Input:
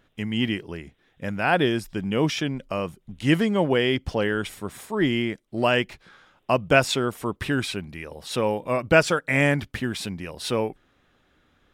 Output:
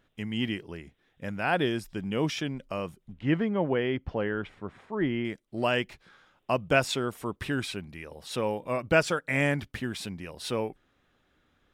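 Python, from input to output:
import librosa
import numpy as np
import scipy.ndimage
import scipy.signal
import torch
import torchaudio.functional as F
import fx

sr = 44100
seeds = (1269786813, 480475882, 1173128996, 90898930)

y = fx.lowpass(x, sr, hz=2100.0, slope=12, at=(3.13, 5.25))
y = y * librosa.db_to_amplitude(-5.5)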